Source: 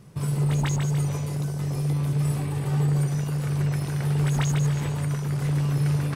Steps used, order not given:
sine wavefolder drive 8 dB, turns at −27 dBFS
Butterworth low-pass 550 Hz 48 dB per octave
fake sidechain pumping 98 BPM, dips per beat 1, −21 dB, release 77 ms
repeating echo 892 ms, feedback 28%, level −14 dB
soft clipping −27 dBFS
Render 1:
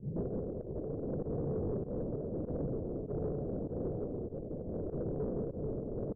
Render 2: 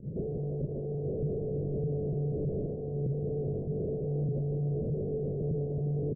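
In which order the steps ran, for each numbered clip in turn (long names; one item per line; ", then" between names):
repeating echo, then sine wavefolder, then Butterworth low-pass, then soft clipping, then fake sidechain pumping
soft clipping, then fake sidechain pumping, then repeating echo, then sine wavefolder, then Butterworth low-pass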